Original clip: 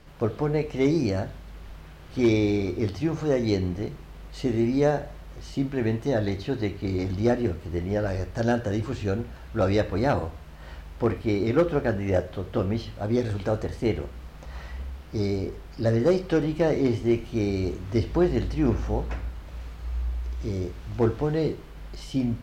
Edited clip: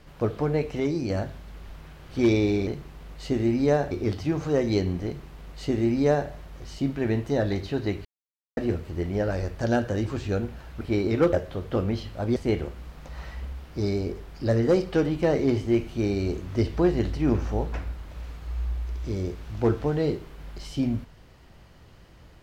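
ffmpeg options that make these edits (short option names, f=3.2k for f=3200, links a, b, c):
-filter_complex "[0:a]asplit=10[a][b][c][d][e][f][g][h][i][j];[a]atrim=end=0.802[k];[b]atrim=start=0.798:end=1.102,asetpts=PTS-STARTPTS,volume=-4.5dB[l];[c]atrim=start=1.098:end=2.672[m];[d]atrim=start=3.808:end=5.052[n];[e]atrim=start=2.668:end=6.81,asetpts=PTS-STARTPTS,afade=t=out:st=4.138:d=0.004:c=hsin[o];[f]atrim=start=6.81:end=7.33,asetpts=PTS-STARTPTS,volume=0[p];[g]atrim=start=7.33:end=9.572,asetpts=PTS-STARTPTS,afade=t=in:d=0.004:c=hsin[q];[h]atrim=start=11.168:end=11.692[r];[i]atrim=start=12.148:end=13.182[s];[j]atrim=start=13.728[t];[k][l]acrossfade=d=0.004:c1=hsin:c2=hsin[u];[u][m]acrossfade=d=0.004:c1=hsin:c2=hsin[v];[v][n]acrossfade=d=0.004:c1=hsin:c2=hsin[w];[o][p][q]concat=n=3:v=0:a=1[x];[w][x]acrossfade=d=0.004:c1=hsin:c2=hsin[y];[y][r]acrossfade=d=0.004:c1=hsin:c2=hsin[z];[z][s]acrossfade=d=0.004:c1=hsin:c2=hsin[aa];[aa][t]acrossfade=d=0.004:c1=hsin:c2=hsin"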